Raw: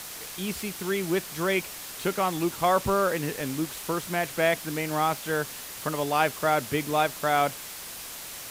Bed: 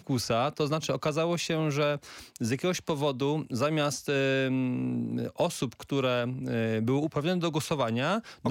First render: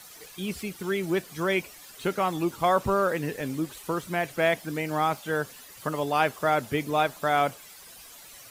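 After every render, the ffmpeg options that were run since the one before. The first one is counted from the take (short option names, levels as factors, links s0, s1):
-af "afftdn=nr=12:nf=-40"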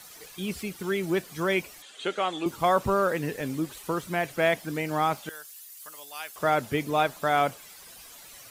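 -filter_complex "[0:a]asettb=1/sr,asplit=3[s0][s1][s2];[s0]atrim=end=1.824[s3];[s1]atrim=start=1.82:end=2.46,asetpts=PTS-STARTPTS,afade=t=in:d=0.004:c=qsin,afade=t=out:st=0.636:d=0.004:c=qsin,highpass=340,equalizer=f=980:t=q:w=4:g=-5,equalizer=f=3300:t=q:w=4:g=9,equalizer=f=5300:t=q:w=4:g=-8,lowpass=f=8300:w=0.5412,lowpass=f=8300:w=1.3066[s4];[s2]atrim=start=2.456[s5];[s3][s4]acrossfade=d=0.004:c1=hsin:c2=qsin[s6];[s6][s5]acrossfade=d=0.004:c1=qsin:c2=hsin,asettb=1/sr,asplit=3[s7][s8][s9];[s7]atrim=end=5.294[s10];[s8]atrim=start=5.29:end=6.36,asetpts=PTS-STARTPTS,afade=t=in:d=0.004:c=qsin,afade=t=out:st=1.066:d=0.004:c=qsin,aderivative[s11];[s9]atrim=start=6.356[s12];[s10][s11]acrossfade=d=0.004:c1=hsin:c2=qsin[s13];[s13][s12]acrossfade=d=0.004:c1=qsin:c2=hsin"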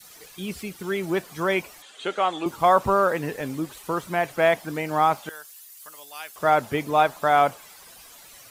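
-af "adynamicequalizer=threshold=0.0158:dfrequency=900:dqfactor=0.9:tfrequency=900:tqfactor=0.9:attack=5:release=100:ratio=0.375:range=3.5:mode=boostabove:tftype=bell"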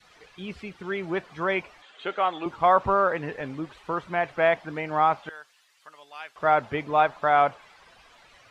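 -af "lowpass=2800,equalizer=f=240:t=o:w=2.3:g=-5"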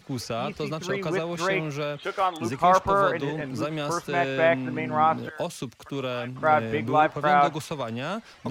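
-filter_complex "[1:a]volume=0.708[s0];[0:a][s0]amix=inputs=2:normalize=0"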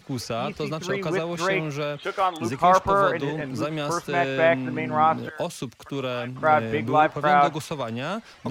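-af "volume=1.19"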